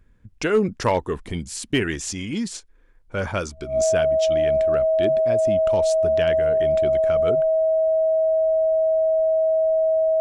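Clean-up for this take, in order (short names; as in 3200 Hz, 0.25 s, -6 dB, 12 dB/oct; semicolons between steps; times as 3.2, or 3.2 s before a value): clip repair -11 dBFS; notch 640 Hz, Q 30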